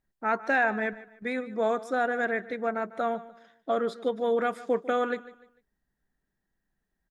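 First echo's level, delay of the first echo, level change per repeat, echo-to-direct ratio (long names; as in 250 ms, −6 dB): −17.5 dB, 149 ms, −9.5 dB, −17.0 dB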